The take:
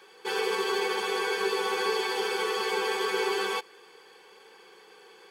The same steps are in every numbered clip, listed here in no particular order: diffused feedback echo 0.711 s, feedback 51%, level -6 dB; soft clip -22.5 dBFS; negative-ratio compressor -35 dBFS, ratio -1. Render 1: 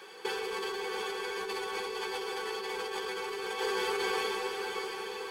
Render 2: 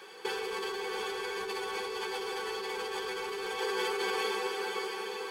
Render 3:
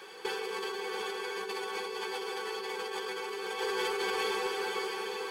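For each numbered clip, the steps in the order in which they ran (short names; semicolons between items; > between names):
soft clip > diffused feedback echo > negative-ratio compressor; diffused feedback echo > soft clip > negative-ratio compressor; diffused feedback echo > negative-ratio compressor > soft clip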